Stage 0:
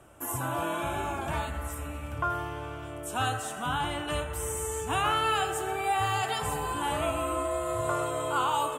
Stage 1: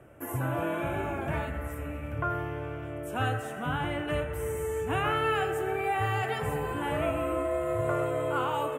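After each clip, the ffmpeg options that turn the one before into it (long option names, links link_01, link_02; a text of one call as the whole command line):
ffmpeg -i in.wav -af "equalizer=frequency=125:width_type=o:width=1:gain=7,equalizer=frequency=250:width_type=o:width=1:gain=3,equalizer=frequency=500:width_type=o:width=1:gain=7,equalizer=frequency=1000:width_type=o:width=1:gain=-5,equalizer=frequency=2000:width_type=o:width=1:gain=8,equalizer=frequency=4000:width_type=o:width=1:gain=-9,equalizer=frequency=8000:width_type=o:width=1:gain=-9,volume=-2.5dB" out.wav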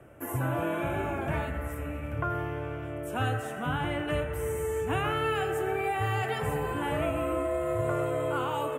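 ffmpeg -i in.wav -filter_complex "[0:a]acrossover=split=450|3000[link_01][link_02][link_03];[link_02]acompressor=threshold=-30dB:ratio=6[link_04];[link_01][link_04][link_03]amix=inputs=3:normalize=0,volume=1dB" out.wav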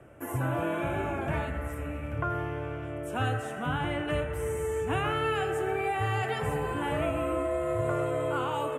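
ffmpeg -i in.wav -af "lowpass=11000" out.wav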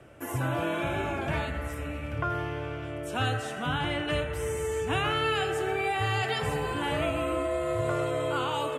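ffmpeg -i in.wav -af "equalizer=frequency=4400:width_type=o:width=1.2:gain=13" out.wav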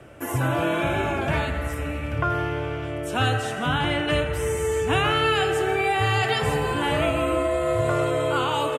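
ffmpeg -i in.wav -af "aecho=1:1:166:0.158,volume=6dB" out.wav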